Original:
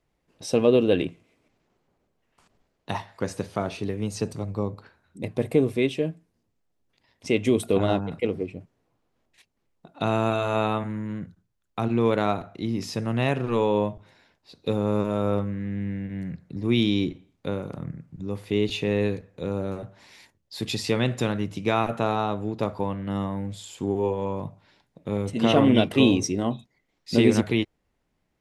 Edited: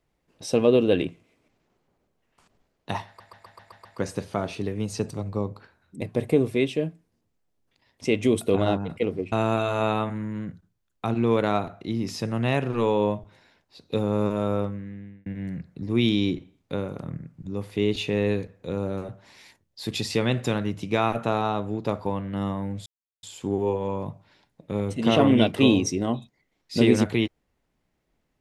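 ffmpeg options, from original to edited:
-filter_complex "[0:a]asplit=10[s0][s1][s2][s3][s4][s5][s6][s7][s8][s9];[s0]atrim=end=3.202[s10];[s1]atrim=start=3.068:end=3.202[s11];[s2]atrim=start=3.068:end=3.202[s12];[s3]atrim=start=3.068:end=3.202[s13];[s4]atrim=start=3.068:end=3.202[s14];[s5]atrim=start=3.068:end=3.202[s15];[s6]atrim=start=3.068:end=8.542[s16];[s7]atrim=start=10.058:end=16,asetpts=PTS-STARTPTS,afade=t=out:st=5.132:d=0.81[s17];[s8]atrim=start=16:end=23.6,asetpts=PTS-STARTPTS,afade=t=in:d=0.004:c=hsin,afade=t=out:st=7.596:d=0.004:c=hsin,apad=pad_dur=0.37[s18];[s9]atrim=start=23.6,asetpts=PTS-STARTPTS,afade=t=in:d=0.004:c=hsin[s19];[s10][s11]acrossfade=d=0.004:c1=hsin:c2=hsin[s20];[s20][s12]acrossfade=d=0.004:c1=hsin:c2=hsin[s21];[s21][s13]acrossfade=d=0.004:c1=hsin:c2=hsin[s22];[s22][s14]acrossfade=d=0.004:c1=hsin:c2=hsin[s23];[s23][s15]acrossfade=d=0.004:c1=hsin:c2=hsin[s24];[s24][s16]acrossfade=d=0.004:c1=hsin:c2=hsin[s25];[s17][s18][s19]concat=n=3:v=0:a=1[s26];[s25][s26]acrossfade=d=0.004:c1=hsin:c2=hsin"

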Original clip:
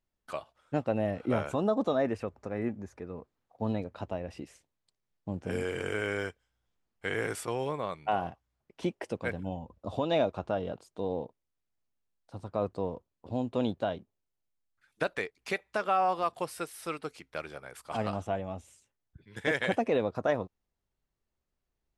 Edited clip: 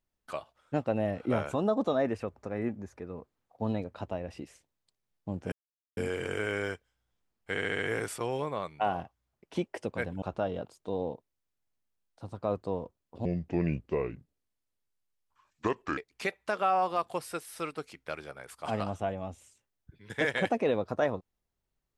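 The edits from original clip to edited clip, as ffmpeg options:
-filter_complex "[0:a]asplit=9[s0][s1][s2][s3][s4][s5][s6][s7][s8];[s0]atrim=end=5.52,asetpts=PTS-STARTPTS,afade=t=out:st=5.516:d=0.004:c=hsin,apad=pad_dur=0.45[s9];[s1]atrim=start=5.52:end=7.132,asetpts=PTS-STARTPTS,afade=t=in:d=0.004:c=hsin[s10];[s2]atrim=start=7.058:end=7.132[s11];[s3]atrim=start=7.058:end=7.132[s12];[s4]atrim=start=7.058:end=7.132[s13];[s5]atrim=start=7.058:end=9.492[s14];[s6]atrim=start=10.328:end=13.364[s15];[s7]atrim=start=13.36:end=15.24,asetpts=PTS-STARTPTS,asetrate=30429,aresample=44100[s16];[s8]atrim=start=15.236[s17];[s9][s10]concat=n=2:v=0:a=1[s18];[s18][s11]acrossfade=d=0.004:c1=hsin:c2=hsin[s19];[s19][s12]acrossfade=d=0.004:c1=hsin:c2=hsin[s20];[s20][s13]acrossfade=d=0.004:c1=hsin:c2=hsin[s21];[s21][s14]acrossfade=d=0.004:c1=hsin:c2=hsin[s22];[s22][s15]acrossfade=d=0.004:c1=hsin:c2=hsin[s23];[s23][s16]acrossfade=d=0.004:c1=hsin:c2=hsin[s24];[s24][s17]acrossfade=d=0.004:c1=hsin:c2=hsin"

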